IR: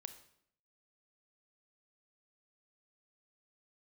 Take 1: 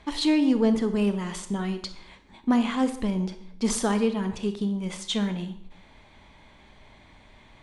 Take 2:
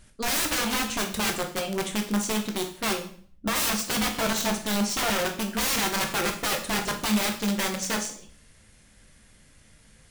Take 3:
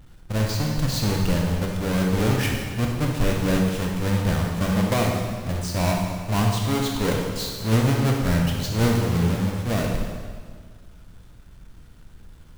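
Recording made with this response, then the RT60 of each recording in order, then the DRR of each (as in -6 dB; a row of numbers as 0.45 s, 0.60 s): 1; 0.70 s, 0.50 s, 1.7 s; 9.5 dB, 3.0 dB, -0.5 dB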